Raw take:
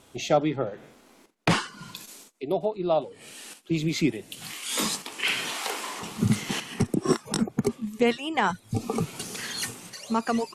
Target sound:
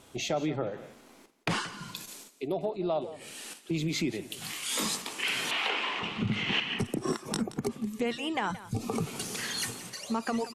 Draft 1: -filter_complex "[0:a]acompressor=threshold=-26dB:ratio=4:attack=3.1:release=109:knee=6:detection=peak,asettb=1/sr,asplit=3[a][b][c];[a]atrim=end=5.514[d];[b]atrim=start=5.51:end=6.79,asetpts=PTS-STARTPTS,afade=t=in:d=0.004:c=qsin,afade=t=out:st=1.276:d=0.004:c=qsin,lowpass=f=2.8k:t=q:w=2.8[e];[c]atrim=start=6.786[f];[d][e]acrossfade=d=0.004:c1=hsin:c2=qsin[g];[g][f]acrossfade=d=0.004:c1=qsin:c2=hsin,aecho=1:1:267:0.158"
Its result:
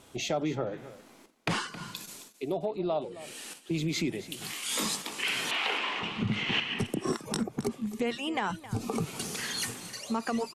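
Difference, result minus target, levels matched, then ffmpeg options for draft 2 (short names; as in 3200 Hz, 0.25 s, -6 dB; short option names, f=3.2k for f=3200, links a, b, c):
echo 92 ms late
-filter_complex "[0:a]acompressor=threshold=-26dB:ratio=4:attack=3.1:release=109:knee=6:detection=peak,asettb=1/sr,asplit=3[a][b][c];[a]atrim=end=5.514[d];[b]atrim=start=5.51:end=6.79,asetpts=PTS-STARTPTS,afade=t=in:d=0.004:c=qsin,afade=t=out:st=1.276:d=0.004:c=qsin,lowpass=f=2.8k:t=q:w=2.8[e];[c]atrim=start=6.786[f];[d][e]acrossfade=d=0.004:c1=hsin:c2=qsin[g];[g][f]acrossfade=d=0.004:c1=qsin:c2=hsin,aecho=1:1:175:0.158"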